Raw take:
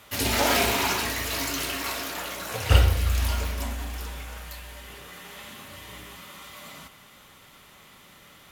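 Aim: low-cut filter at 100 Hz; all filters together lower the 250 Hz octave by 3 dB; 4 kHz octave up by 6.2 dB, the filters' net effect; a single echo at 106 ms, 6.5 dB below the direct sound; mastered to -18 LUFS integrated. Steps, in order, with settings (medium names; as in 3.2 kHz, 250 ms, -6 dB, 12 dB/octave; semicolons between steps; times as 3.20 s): high-pass 100 Hz; peaking EQ 250 Hz -3.5 dB; peaking EQ 4 kHz +8 dB; delay 106 ms -6.5 dB; trim +5 dB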